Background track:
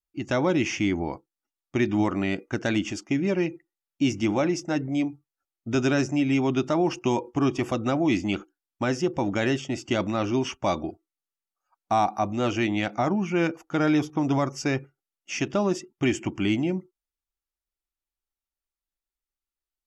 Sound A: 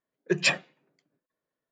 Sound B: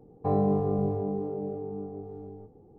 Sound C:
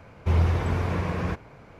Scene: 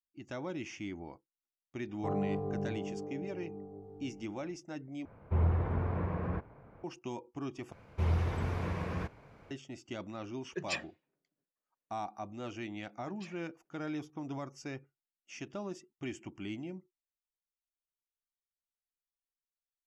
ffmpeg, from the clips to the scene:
ffmpeg -i bed.wav -i cue0.wav -i cue1.wav -i cue2.wav -filter_complex "[3:a]asplit=2[link_01][link_02];[1:a]asplit=2[link_03][link_04];[0:a]volume=-16.5dB[link_05];[link_01]lowpass=1400[link_06];[link_04]acompressor=threshold=-33dB:ratio=6:attack=3.2:release=140:knee=1:detection=peak[link_07];[link_05]asplit=3[link_08][link_09][link_10];[link_08]atrim=end=5.054[link_11];[link_06]atrim=end=1.79,asetpts=PTS-STARTPTS,volume=-7dB[link_12];[link_09]atrim=start=6.836:end=7.724[link_13];[link_02]atrim=end=1.79,asetpts=PTS-STARTPTS,volume=-8.5dB[link_14];[link_10]atrim=start=9.506[link_15];[2:a]atrim=end=2.78,asetpts=PTS-STARTPTS,volume=-9dB,afade=type=in:duration=0.004:curve=hsin,afade=type=out:start_time=2.776:duration=0.004:curve=hsin,adelay=1790[link_16];[link_03]atrim=end=1.71,asetpts=PTS-STARTPTS,volume=-13.5dB,afade=type=in:duration=0.004:curve=hsin,afade=type=out:start_time=1.706:duration=0.004:curve=hsin,adelay=452466S[link_17];[link_07]atrim=end=1.71,asetpts=PTS-STARTPTS,volume=-17dB,afade=type=in:duration=0.004:curve=hsin,afade=type=out:start_time=1.706:duration=0.004:curve=hsin,adelay=12780[link_18];[link_11][link_12]acrossfade=duration=0.004:curve1=hsin:curve2=hsin[link_19];[link_19][link_13]acrossfade=duration=0.004:curve1=hsin:curve2=hsin[link_20];[link_20][link_14]acrossfade=duration=0.004:curve1=hsin:curve2=hsin[link_21];[link_21][link_15]acrossfade=duration=0.004:curve1=hsin:curve2=hsin[link_22];[link_22][link_16][link_17][link_18]amix=inputs=4:normalize=0" out.wav

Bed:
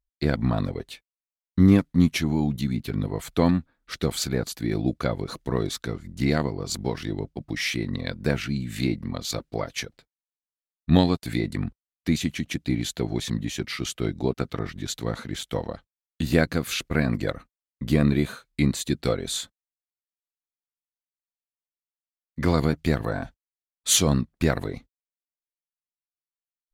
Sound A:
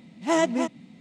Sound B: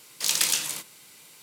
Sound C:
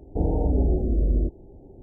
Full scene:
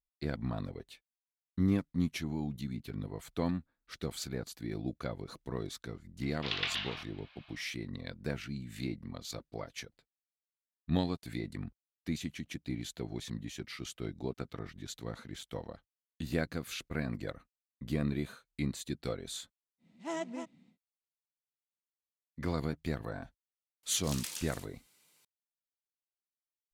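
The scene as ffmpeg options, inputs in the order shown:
ffmpeg -i bed.wav -i cue0.wav -i cue1.wav -filter_complex "[2:a]asplit=2[link_01][link_02];[0:a]volume=-12.5dB[link_03];[link_01]highpass=frequency=490:width_type=q:width=0.5412,highpass=frequency=490:width_type=q:width=1.307,lowpass=frequency=3500:width_type=q:width=0.5176,lowpass=frequency=3500:width_type=q:width=0.7071,lowpass=frequency=3500:width_type=q:width=1.932,afreqshift=170,atrim=end=1.42,asetpts=PTS-STARTPTS,volume=-3dB,afade=type=in:duration=0.004:curve=hsin,afade=type=out:start_time=1.416:duration=0.004:curve=hsin,adelay=6220[link_04];[1:a]atrim=end=1,asetpts=PTS-STARTPTS,volume=-15.5dB,afade=type=in:duration=0.1,afade=type=out:start_time=0.9:duration=0.1,adelay=19780[link_05];[link_02]atrim=end=1.42,asetpts=PTS-STARTPTS,volume=-17.5dB,afade=type=in:duration=0.004:curve=hsin,afade=type=out:start_time=1.416:duration=0.004:curve=hsin,adelay=23830[link_06];[link_03][link_04][link_05][link_06]amix=inputs=4:normalize=0" out.wav

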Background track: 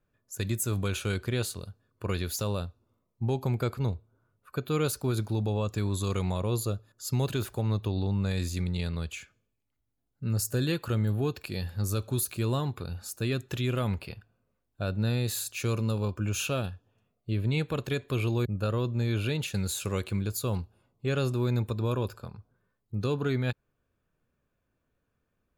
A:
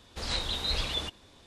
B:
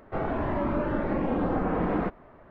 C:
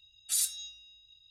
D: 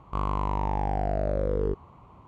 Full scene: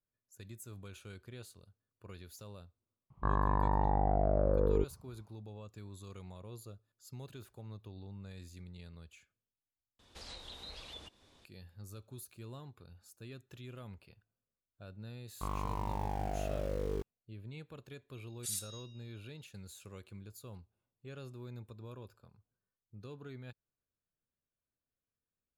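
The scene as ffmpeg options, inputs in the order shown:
ffmpeg -i bed.wav -i cue0.wav -i cue1.wav -i cue2.wav -i cue3.wav -filter_complex "[4:a]asplit=2[link_01][link_02];[0:a]volume=-19.5dB[link_03];[link_01]afwtdn=0.0158[link_04];[1:a]acrossover=split=350|980|2200[link_05][link_06][link_07][link_08];[link_05]acompressor=threshold=-50dB:ratio=2.5[link_09];[link_06]acompressor=threshold=-52dB:ratio=2.5[link_10];[link_07]acompressor=threshold=-56dB:ratio=5[link_11];[link_08]acompressor=threshold=-43dB:ratio=3[link_12];[link_09][link_10][link_11][link_12]amix=inputs=4:normalize=0[link_13];[link_02]aeval=exprs='val(0)*gte(abs(val(0)),0.0141)':channel_layout=same[link_14];[link_03]asplit=2[link_15][link_16];[link_15]atrim=end=9.994[link_17];[link_13]atrim=end=1.46,asetpts=PTS-STARTPTS,volume=-8dB[link_18];[link_16]atrim=start=11.446[link_19];[link_04]atrim=end=2.27,asetpts=PTS-STARTPTS,volume=-2.5dB,afade=type=in:duration=0.004:curve=hsin,afade=type=out:start_time=2.266:duration=0.004:curve=hsin,adelay=3100[link_20];[link_14]atrim=end=2.27,asetpts=PTS-STARTPTS,volume=-9.5dB,afade=type=in:duration=0.004:curve=hsin,afade=type=out:start_time=2.266:duration=0.004:curve=hsin,adelay=15280[link_21];[3:a]atrim=end=1.3,asetpts=PTS-STARTPTS,volume=-10dB,afade=type=in:duration=0.004:curve=hsin,afade=type=out:start_time=1.296:duration=0.004:curve=hsin,adelay=18140[link_22];[link_17][link_18]acrossfade=duration=0.004:curve1=hsin:curve2=hsin[link_23];[link_23][link_19]acrossfade=duration=0.004:curve1=hsin:curve2=hsin[link_24];[link_24][link_20][link_21][link_22]amix=inputs=4:normalize=0" out.wav

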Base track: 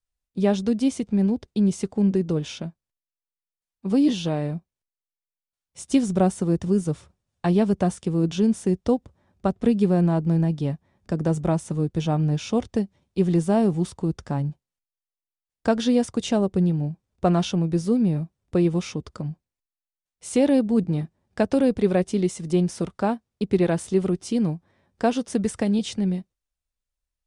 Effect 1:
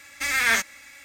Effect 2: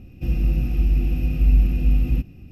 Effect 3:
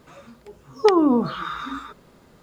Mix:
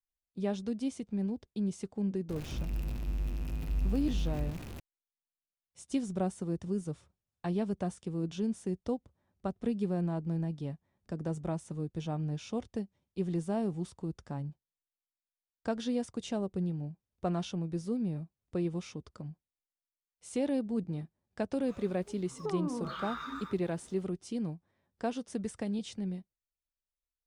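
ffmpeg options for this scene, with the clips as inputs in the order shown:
ffmpeg -i bed.wav -i cue0.wav -i cue1.wav -i cue2.wav -filter_complex "[0:a]volume=-12.5dB[link_01];[2:a]aeval=exprs='val(0)+0.5*0.0841*sgn(val(0))':channel_layout=same[link_02];[3:a]acompressor=threshold=-24dB:ratio=6:attack=3.2:release=140:knee=1:detection=peak[link_03];[link_02]atrim=end=2.51,asetpts=PTS-STARTPTS,volume=-17dB,afade=type=in:duration=0.004:curve=hsin,afade=type=out:start_time=2.506:duration=0.004:curve=hsin,adelay=2290[link_04];[link_03]atrim=end=2.42,asetpts=PTS-STARTPTS,volume=-9dB,afade=type=in:duration=0.004:curve=hsin,afade=type=out:start_time=2.416:duration=0.004:curve=hsin,adelay=21610[link_05];[link_01][link_04][link_05]amix=inputs=3:normalize=0" out.wav

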